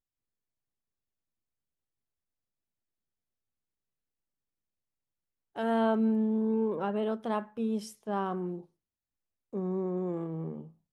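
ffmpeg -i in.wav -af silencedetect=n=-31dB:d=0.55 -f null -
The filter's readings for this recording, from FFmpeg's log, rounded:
silence_start: 0.00
silence_end: 5.58 | silence_duration: 5.58
silence_start: 8.54
silence_end: 9.54 | silence_duration: 1.00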